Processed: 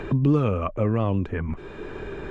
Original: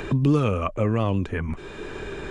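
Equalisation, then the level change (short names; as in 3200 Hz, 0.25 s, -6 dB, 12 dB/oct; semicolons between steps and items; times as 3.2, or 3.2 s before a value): LPF 1700 Hz 6 dB/oct; 0.0 dB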